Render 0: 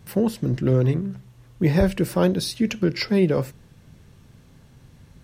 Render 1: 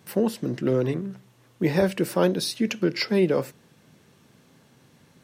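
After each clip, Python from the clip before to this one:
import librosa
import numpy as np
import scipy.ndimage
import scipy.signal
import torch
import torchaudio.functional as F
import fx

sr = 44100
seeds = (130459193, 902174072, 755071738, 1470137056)

y = scipy.signal.sosfilt(scipy.signal.butter(2, 220.0, 'highpass', fs=sr, output='sos'), x)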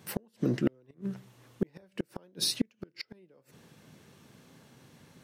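y = fx.gate_flip(x, sr, shuts_db=-15.0, range_db=-38)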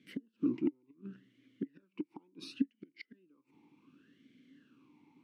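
y = fx.vowel_sweep(x, sr, vowels='i-u', hz=0.69)
y = y * librosa.db_to_amplitude(4.0)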